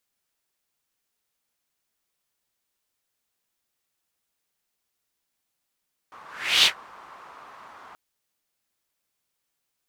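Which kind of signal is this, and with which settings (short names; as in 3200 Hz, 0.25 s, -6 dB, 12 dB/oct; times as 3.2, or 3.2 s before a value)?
whoosh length 1.83 s, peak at 0.53, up 0.42 s, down 0.11 s, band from 1100 Hz, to 3500 Hz, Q 3, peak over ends 29.5 dB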